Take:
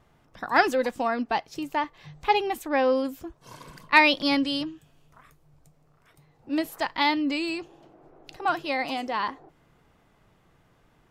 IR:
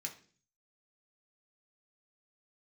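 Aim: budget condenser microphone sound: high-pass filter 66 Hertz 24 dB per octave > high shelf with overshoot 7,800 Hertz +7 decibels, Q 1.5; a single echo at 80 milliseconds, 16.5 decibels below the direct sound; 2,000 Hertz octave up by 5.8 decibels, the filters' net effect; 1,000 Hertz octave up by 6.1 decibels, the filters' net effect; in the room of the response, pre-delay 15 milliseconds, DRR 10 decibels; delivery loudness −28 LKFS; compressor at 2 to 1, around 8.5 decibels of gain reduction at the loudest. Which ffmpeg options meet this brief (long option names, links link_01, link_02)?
-filter_complex "[0:a]equalizer=frequency=1000:width_type=o:gain=6.5,equalizer=frequency=2000:width_type=o:gain=5.5,acompressor=threshold=-21dB:ratio=2,aecho=1:1:80:0.15,asplit=2[link_01][link_02];[1:a]atrim=start_sample=2205,adelay=15[link_03];[link_02][link_03]afir=irnorm=-1:irlink=0,volume=-8.5dB[link_04];[link_01][link_04]amix=inputs=2:normalize=0,highpass=frequency=66:width=0.5412,highpass=frequency=66:width=1.3066,highshelf=frequency=7800:width_type=q:width=1.5:gain=7,volume=-3dB"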